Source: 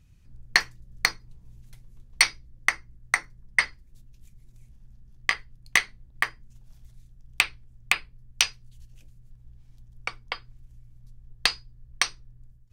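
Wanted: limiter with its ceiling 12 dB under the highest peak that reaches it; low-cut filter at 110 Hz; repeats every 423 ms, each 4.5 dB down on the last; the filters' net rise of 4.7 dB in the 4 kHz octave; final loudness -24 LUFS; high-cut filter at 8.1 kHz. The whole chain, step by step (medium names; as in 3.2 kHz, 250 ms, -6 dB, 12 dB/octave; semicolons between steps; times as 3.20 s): high-pass 110 Hz; low-pass 8.1 kHz; peaking EQ 4 kHz +6 dB; peak limiter -11.5 dBFS; feedback delay 423 ms, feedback 60%, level -4.5 dB; trim +9 dB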